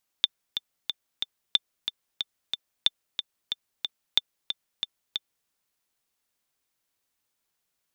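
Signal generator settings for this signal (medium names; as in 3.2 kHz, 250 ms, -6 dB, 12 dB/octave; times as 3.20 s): metronome 183 bpm, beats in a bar 4, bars 4, 3.56 kHz, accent 8.5 dB -6 dBFS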